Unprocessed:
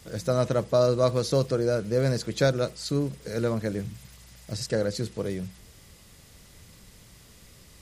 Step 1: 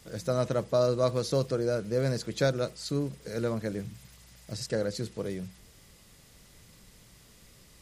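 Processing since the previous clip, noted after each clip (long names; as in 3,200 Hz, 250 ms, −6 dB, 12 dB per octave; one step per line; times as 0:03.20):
parametric band 80 Hz −6 dB 0.5 octaves
level −3.5 dB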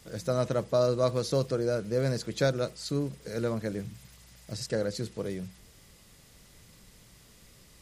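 no processing that can be heard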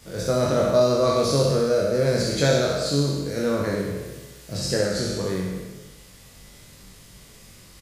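peak hold with a decay on every bin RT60 1.35 s
double-tracking delay 21 ms −4 dB
flutter between parallel walls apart 11 metres, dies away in 0.58 s
level +3 dB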